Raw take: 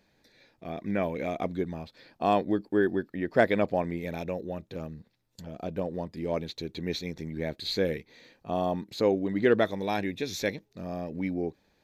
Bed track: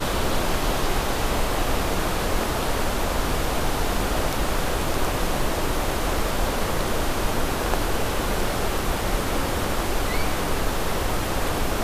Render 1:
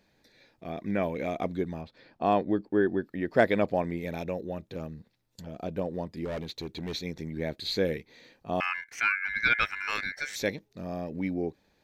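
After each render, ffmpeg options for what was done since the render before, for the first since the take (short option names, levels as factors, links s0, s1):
-filter_complex "[0:a]asettb=1/sr,asplit=3[s0][s1][s2];[s0]atrim=end=1.814[s3];[s1]atrim=start=1.81:end=3.03,asetpts=PTS-STARTPTS,afade=t=in:d=0.004:c=qsin,afade=t=out:st=1.216:d=0.004:c=qsin,lowpass=f=2700:p=1[s4];[s2]atrim=start=3.026[s5];[s3][s4]acrossfade=d=0.004:c1=hsin:c2=qsin[s6];[s6][s5]acrossfade=d=0.004:c1=qsin:c2=hsin,asettb=1/sr,asplit=3[s7][s8][s9];[s7]atrim=end=6.254[s10];[s8]atrim=start=6.25:end=6.93,asetpts=PTS-STARTPTS,afade=t=in:d=0.004:c=qsin,afade=t=out:st=0.676:d=0.004:c=qsin,asoftclip=type=hard:threshold=0.0282[s11];[s9]atrim=start=6.926[s12];[s10][s11]acrossfade=d=0.004:c1=hsin:c2=qsin[s13];[s13][s12]acrossfade=d=0.004:c1=qsin:c2=hsin,asettb=1/sr,asplit=3[s14][s15][s16];[s14]atrim=end=8.604[s17];[s15]atrim=start=8.6:end=10.36,asetpts=PTS-STARTPTS,afade=t=in:d=0.004:c=qsin,afade=t=out:st=1.756:d=0.004:c=qsin,aeval=exprs='val(0)*sin(2*PI*1900*n/s)':c=same[s18];[s16]atrim=start=10.356[s19];[s17][s18]acrossfade=d=0.004:c1=hsin:c2=qsin[s20];[s20][s19]acrossfade=d=0.004:c1=qsin:c2=hsin"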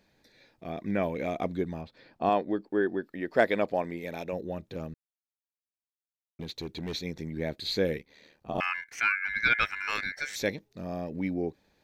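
-filter_complex "[0:a]asettb=1/sr,asplit=3[s0][s1][s2];[s0]atrim=end=2.294[s3];[s1]atrim=start=2.29:end=4.33,asetpts=PTS-STARTPTS,afade=t=in:d=0.004:c=qsin,afade=t=out:st=2.036:d=0.004:c=qsin,equalizer=f=91:t=o:w=2.4:g=-10[s4];[s2]atrim=start=4.326[s5];[s3][s4]acrossfade=d=0.004:c1=hsin:c2=qsin[s6];[s6][s5]acrossfade=d=0.004:c1=qsin:c2=hsin,asettb=1/sr,asplit=3[s7][s8][s9];[s7]atrim=end=7.984[s10];[s8]atrim=start=7.98:end=8.58,asetpts=PTS-STARTPTS,afade=t=in:d=0.004:c=qsin,afade=t=out:st=0.596:d=0.004:c=qsin,aeval=exprs='val(0)*sin(2*PI*38*n/s)':c=same[s11];[s9]atrim=start=8.576[s12];[s10][s11]acrossfade=d=0.004:c1=hsin:c2=qsin[s13];[s13][s12]acrossfade=d=0.004:c1=qsin:c2=hsin,asplit=3[s14][s15][s16];[s14]atrim=end=4.94,asetpts=PTS-STARTPTS,afade=t=out:st=4.936:d=0.004:c=hsin[s17];[s15]atrim=start=4.94:end=6.39,asetpts=PTS-STARTPTS,volume=0[s18];[s16]atrim=start=6.39,asetpts=PTS-STARTPTS,afade=t=in:d=0.004:c=hsin[s19];[s17][s18][s19]concat=n=3:v=0:a=1"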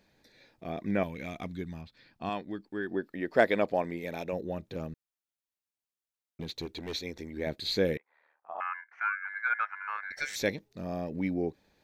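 -filter_complex "[0:a]asettb=1/sr,asplit=3[s0][s1][s2];[s0]atrim=end=1.034[s3];[s1]atrim=start=1.03:end=2.91,asetpts=PTS-STARTPTS,afade=t=in:d=0.004:c=qsin,afade=t=out:st=1.876:d=0.004:c=qsin,equalizer=f=540:t=o:w=2.1:g=-12.5[s4];[s2]atrim=start=2.906[s5];[s3][s4]acrossfade=d=0.004:c1=hsin:c2=qsin[s6];[s6][s5]acrossfade=d=0.004:c1=qsin:c2=hsin,asettb=1/sr,asplit=3[s7][s8][s9];[s7]atrim=end=6.654[s10];[s8]atrim=start=6.65:end=7.47,asetpts=PTS-STARTPTS,afade=t=in:d=0.004:c=qsin,afade=t=out:st=0.816:d=0.004:c=qsin,equalizer=f=150:t=o:w=0.77:g=-13.5[s11];[s9]atrim=start=7.466[s12];[s10][s11]acrossfade=d=0.004:c1=hsin:c2=qsin[s13];[s13][s12]acrossfade=d=0.004:c1=qsin:c2=hsin,asettb=1/sr,asplit=3[s14][s15][s16];[s14]atrim=end=7.974[s17];[s15]atrim=start=7.97:end=10.11,asetpts=PTS-STARTPTS,afade=t=in:d=0.004:c=qsin,afade=t=out:st=2.136:d=0.004:c=qsin,asuperpass=centerf=1100:order=4:qfactor=1.4[s18];[s16]atrim=start=10.106[s19];[s17][s18]acrossfade=d=0.004:c1=hsin:c2=qsin[s20];[s20][s19]acrossfade=d=0.004:c1=qsin:c2=hsin"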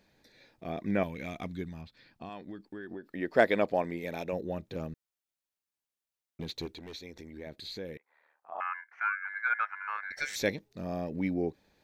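-filter_complex "[0:a]asettb=1/sr,asplit=3[s0][s1][s2];[s0]atrim=end=1.684[s3];[s1]atrim=start=1.68:end=3.06,asetpts=PTS-STARTPTS,afade=t=in:d=0.004:c=qsin,afade=t=out:st=1.376:d=0.004:c=qsin,acompressor=threshold=0.0126:ratio=6:attack=3.2:release=140:knee=1:detection=peak[s4];[s2]atrim=start=3.056[s5];[s3][s4]acrossfade=d=0.004:c1=hsin:c2=qsin[s6];[s6][s5]acrossfade=d=0.004:c1=qsin:c2=hsin,asettb=1/sr,asplit=3[s7][s8][s9];[s7]atrim=end=6.724[s10];[s8]atrim=start=6.72:end=8.52,asetpts=PTS-STARTPTS,afade=t=in:d=0.004:c=qsin,afade=t=out:st=1.796:d=0.004:c=qsin,acompressor=threshold=0.00447:ratio=2:attack=3.2:release=140:knee=1:detection=peak[s11];[s9]atrim=start=8.516[s12];[s10][s11]acrossfade=d=0.004:c1=hsin:c2=qsin[s13];[s13][s12]acrossfade=d=0.004:c1=qsin:c2=hsin"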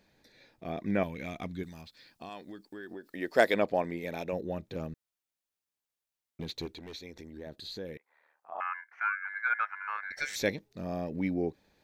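-filter_complex "[0:a]asettb=1/sr,asplit=3[s0][s1][s2];[s0]atrim=end=1.634[s3];[s1]atrim=start=1.63:end=3.54,asetpts=PTS-STARTPTS,afade=t=in:d=0.004:c=qsin,afade=t=out:st=1.906:d=0.004:c=qsin,bass=f=250:g=-6,treble=f=4000:g=11[s4];[s2]atrim=start=3.536[s5];[s3][s4]acrossfade=d=0.004:c1=hsin:c2=qsin[s6];[s6][s5]acrossfade=d=0.004:c1=qsin:c2=hsin,asettb=1/sr,asplit=3[s7][s8][s9];[s7]atrim=end=7.244[s10];[s8]atrim=start=7.24:end=7.86,asetpts=PTS-STARTPTS,afade=t=in:d=0.004:c=qsin,afade=t=out:st=0.616:d=0.004:c=qsin,equalizer=f=2200:t=o:w=0.21:g=-13.5[s11];[s9]atrim=start=7.856[s12];[s10][s11]acrossfade=d=0.004:c1=hsin:c2=qsin[s13];[s13][s12]acrossfade=d=0.004:c1=qsin:c2=hsin"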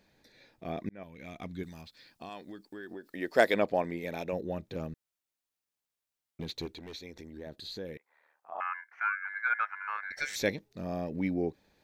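-filter_complex "[0:a]asplit=2[s0][s1];[s0]atrim=end=0.89,asetpts=PTS-STARTPTS,afade=t=out:st=0.886:d=0.004:c=hsin[s2];[s1]atrim=start=0.89,asetpts=PTS-STARTPTS,afade=t=in:d=0.79[s3];[s2][s3]concat=n=2:v=0:a=1"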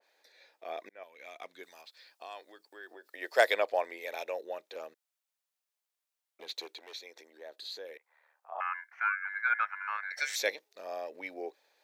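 -af "highpass=f=490:w=0.5412,highpass=f=490:w=1.3066,adynamicequalizer=threshold=0.00708:dfrequency=2100:dqfactor=0.7:tfrequency=2100:tqfactor=0.7:attack=5:release=100:ratio=0.375:range=1.5:mode=boostabove:tftype=highshelf"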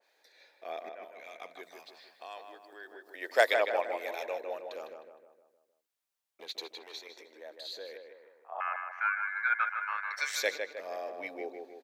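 -filter_complex "[0:a]asplit=2[s0][s1];[s1]adelay=155,lowpass=f=2200:p=1,volume=0.562,asplit=2[s2][s3];[s3]adelay=155,lowpass=f=2200:p=1,volume=0.51,asplit=2[s4][s5];[s5]adelay=155,lowpass=f=2200:p=1,volume=0.51,asplit=2[s6][s7];[s7]adelay=155,lowpass=f=2200:p=1,volume=0.51,asplit=2[s8][s9];[s9]adelay=155,lowpass=f=2200:p=1,volume=0.51,asplit=2[s10][s11];[s11]adelay=155,lowpass=f=2200:p=1,volume=0.51[s12];[s0][s2][s4][s6][s8][s10][s12]amix=inputs=7:normalize=0"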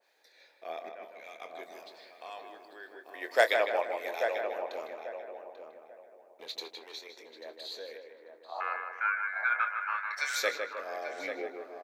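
-filter_complex "[0:a]asplit=2[s0][s1];[s1]adelay=25,volume=0.299[s2];[s0][s2]amix=inputs=2:normalize=0,asplit=2[s3][s4];[s4]adelay=840,lowpass=f=1500:p=1,volume=0.473,asplit=2[s5][s6];[s6]adelay=840,lowpass=f=1500:p=1,volume=0.26,asplit=2[s7][s8];[s8]adelay=840,lowpass=f=1500:p=1,volume=0.26[s9];[s3][s5][s7][s9]amix=inputs=4:normalize=0"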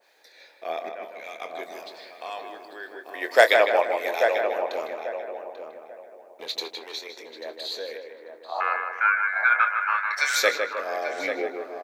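-af "volume=2.82,alimiter=limit=0.708:level=0:latency=1"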